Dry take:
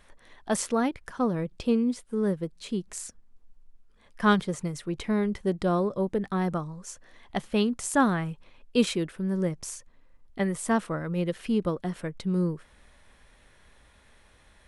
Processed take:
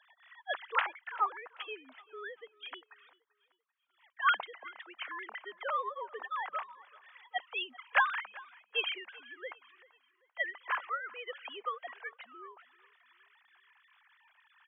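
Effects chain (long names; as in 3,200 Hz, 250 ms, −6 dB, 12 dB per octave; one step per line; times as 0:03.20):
three sine waves on the formant tracks
high-pass filter 830 Hz 24 dB per octave
repeating echo 389 ms, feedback 39%, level −22 dB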